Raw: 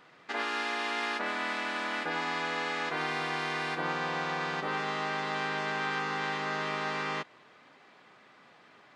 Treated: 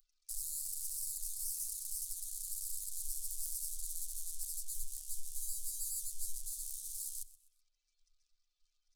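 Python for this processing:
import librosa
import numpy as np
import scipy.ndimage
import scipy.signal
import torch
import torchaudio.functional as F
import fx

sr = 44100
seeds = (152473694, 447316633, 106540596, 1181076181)

p1 = fx.spec_expand(x, sr, power=2.4)
p2 = fx.peak_eq(p1, sr, hz=1500.0, db=12.5, octaves=2.6)
p3 = p2 + 0.42 * np.pad(p2, (int(6.5 * sr / 1000.0), 0))[:len(p2)]
p4 = fx.over_compress(p3, sr, threshold_db=-29.0, ratio=-0.5)
p5 = p3 + F.gain(torch.from_numpy(p4), -2.0).numpy()
p6 = 10.0 ** (-24.0 / 20.0) * np.tanh(p5 / 10.0 ** (-24.0 / 20.0))
p7 = scipy.signal.sosfilt(scipy.signal.cheby2(4, 80, [100.0, 2000.0], 'bandstop', fs=sr, output='sos'), p6)
p8 = fx.echo_feedback(p7, sr, ms=126, feedback_pct=35, wet_db=-18.5)
y = F.gain(torch.from_numpy(p8), 15.0).numpy()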